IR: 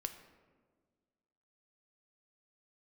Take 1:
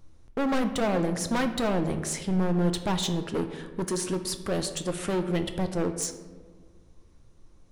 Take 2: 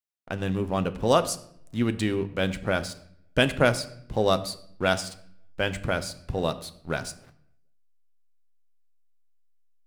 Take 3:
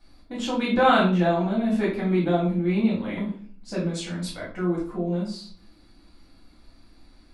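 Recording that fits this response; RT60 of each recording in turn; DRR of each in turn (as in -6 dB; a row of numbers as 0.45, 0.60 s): 1; 1.6, 0.65, 0.50 s; 7.0, 10.0, -7.0 dB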